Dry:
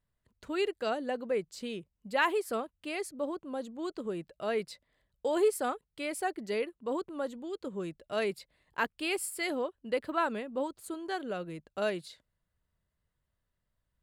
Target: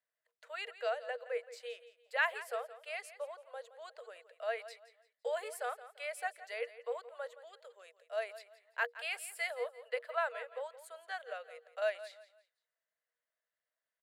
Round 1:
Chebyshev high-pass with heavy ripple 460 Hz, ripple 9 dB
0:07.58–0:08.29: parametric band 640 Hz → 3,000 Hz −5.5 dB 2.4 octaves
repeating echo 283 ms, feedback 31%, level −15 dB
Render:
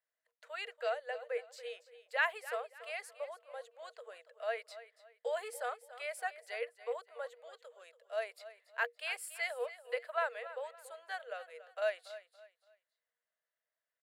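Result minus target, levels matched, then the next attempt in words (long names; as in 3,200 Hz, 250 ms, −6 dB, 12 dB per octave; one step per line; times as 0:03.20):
echo 113 ms late
Chebyshev high-pass with heavy ripple 460 Hz, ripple 9 dB
0:07.58–0:08.29: parametric band 640 Hz → 3,000 Hz −5.5 dB 2.4 octaves
repeating echo 170 ms, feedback 31%, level −15 dB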